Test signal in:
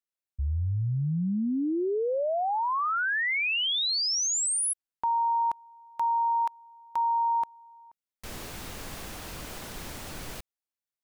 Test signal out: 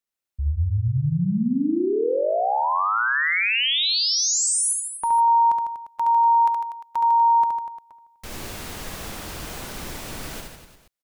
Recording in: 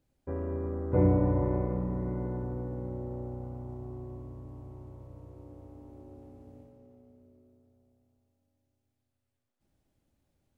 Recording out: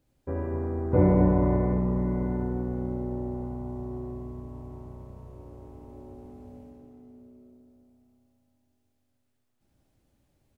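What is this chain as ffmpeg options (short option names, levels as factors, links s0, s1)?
-af "aecho=1:1:70|150.5|243.1|349.5|472:0.631|0.398|0.251|0.158|0.1,volume=1.5"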